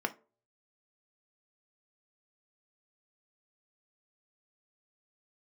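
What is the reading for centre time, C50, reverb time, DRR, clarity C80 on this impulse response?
4 ms, 18.5 dB, 0.40 s, 5.5 dB, 26.0 dB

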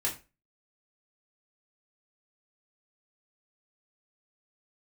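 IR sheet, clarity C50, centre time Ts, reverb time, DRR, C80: 11.0 dB, 19 ms, 0.30 s, -3.5 dB, 17.0 dB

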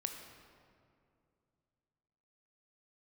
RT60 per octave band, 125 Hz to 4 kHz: 3.3, 2.9, 2.6, 2.3, 1.8, 1.3 s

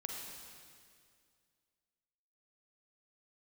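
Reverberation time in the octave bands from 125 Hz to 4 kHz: 2.4, 2.4, 2.3, 2.1, 2.0, 2.0 s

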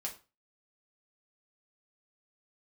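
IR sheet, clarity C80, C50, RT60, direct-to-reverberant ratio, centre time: 17.5 dB, 11.5 dB, 0.30 s, -1.5 dB, 14 ms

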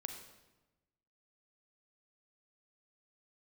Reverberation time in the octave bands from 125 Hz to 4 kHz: 1.4, 1.3, 1.1, 1.0, 0.95, 0.85 s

